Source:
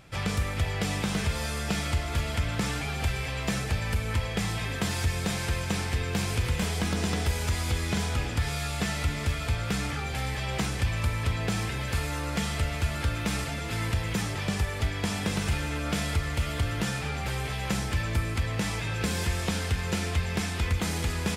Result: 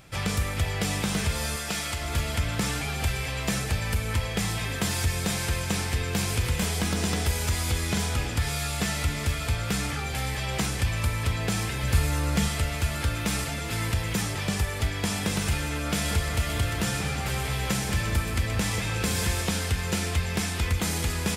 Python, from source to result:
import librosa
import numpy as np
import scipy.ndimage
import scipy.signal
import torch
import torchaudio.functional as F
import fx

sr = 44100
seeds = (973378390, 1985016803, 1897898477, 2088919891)

y = fx.low_shelf(x, sr, hz=360.0, db=-9.0, at=(1.56, 2.01))
y = fx.low_shelf(y, sr, hz=210.0, db=7.5, at=(11.83, 12.48))
y = fx.echo_split(y, sr, split_hz=1700.0, low_ms=186, high_ms=126, feedback_pct=52, wet_db=-8.0, at=(16.04, 19.41), fade=0.02)
y = fx.high_shelf(y, sr, hz=6900.0, db=8.0)
y = F.gain(torch.from_numpy(y), 1.0).numpy()